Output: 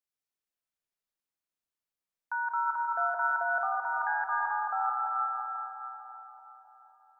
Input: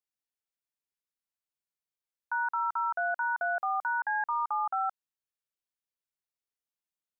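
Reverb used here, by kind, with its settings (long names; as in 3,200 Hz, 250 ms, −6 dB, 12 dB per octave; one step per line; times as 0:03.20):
comb and all-pass reverb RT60 4.5 s, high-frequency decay 0.35×, pre-delay 115 ms, DRR −0.5 dB
level −2 dB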